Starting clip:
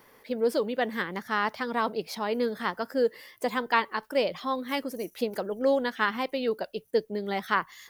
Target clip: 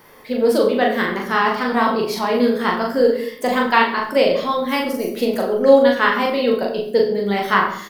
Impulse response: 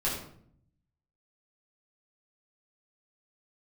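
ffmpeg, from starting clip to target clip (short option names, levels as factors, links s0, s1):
-filter_complex "[0:a]asplit=2[s0][s1];[s1]adelay=40,volume=0.668[s2];[s0][s2]amix=inputs=2:normalize=0,asplit=2[s3][s4];[1:a]atrim=start_sample=2205,adelay=11[s5];[s4][s5]afir=irnorm=-1:irlink=0,volume=0.316[s6];[s3][s6]amix=inputs=2:normalize=0,volume=2.24"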